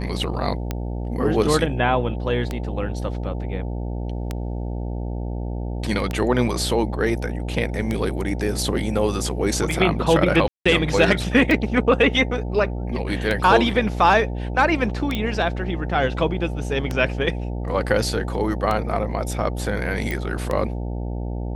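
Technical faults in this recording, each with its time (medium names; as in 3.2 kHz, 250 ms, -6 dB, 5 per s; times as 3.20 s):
buzz 60 Hz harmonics 15 -27 dBFS
tick 33 1/3 rpm -11 dBFS
10.48–10.65 s: dropout 175 ms
15.15 s: pop -12 dBFS
20.11 s: pop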